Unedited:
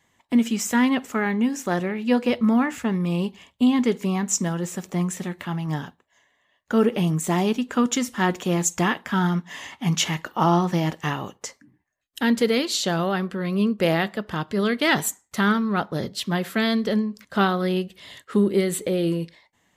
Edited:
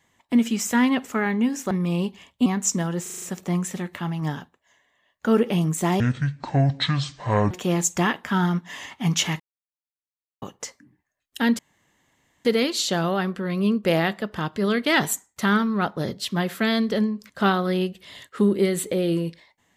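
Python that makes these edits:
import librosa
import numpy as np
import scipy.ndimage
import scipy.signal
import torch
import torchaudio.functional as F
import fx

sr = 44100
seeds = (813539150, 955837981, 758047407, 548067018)

y = fx.edit(x, sr, fx.cut(start_s=1.71, length_s=1.2),
    fx.cut(start_s=3.66, length_s=0.46),
    fx.stutter(start_s=4.68, slice_s=0.04, count=6),
    fx.speed_span(start_s=7.46, length_s=0.86, speed=0.57),
    fx.silence(start_s=10.21, length_s=1.02),
    fx.insert_room_tone(at_s=12.4, length_s=0.86), tone=tone)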